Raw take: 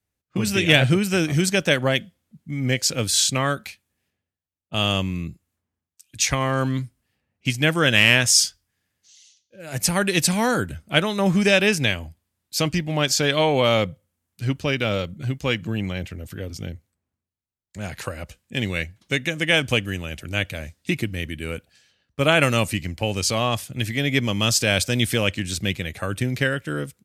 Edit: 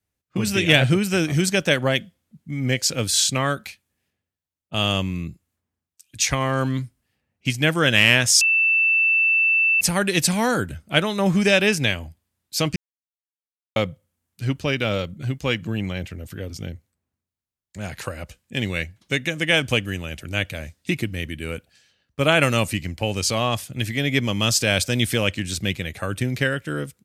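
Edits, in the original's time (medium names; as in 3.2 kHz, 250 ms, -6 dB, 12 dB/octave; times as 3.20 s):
8.41–9.81 s: bleep 2.66 kHz -15 dBFS
12.76–13.76 s: mute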